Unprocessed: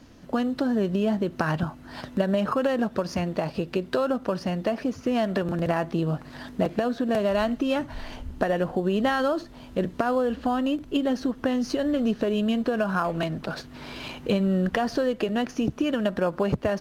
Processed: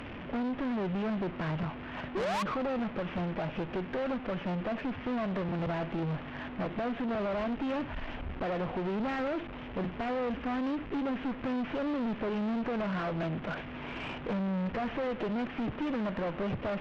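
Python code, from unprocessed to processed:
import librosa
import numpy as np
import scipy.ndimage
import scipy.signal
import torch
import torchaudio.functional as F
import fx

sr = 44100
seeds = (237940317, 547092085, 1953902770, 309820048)

y = fx.delta_mod(x, sr, bps=16000, step_db=-35.5)
y = fx.spec_paint(y, sr, seeds[0], shape='rise', start_s=2.15, length_s=0.28, low_hz=350.0, high_hz=1200.0, level_db=-20.0)
y = fx.tube_stage(y, sr, drive_db=31.0, bias=0.4)
y = y * 10.0 ** (1.0 / 20.0)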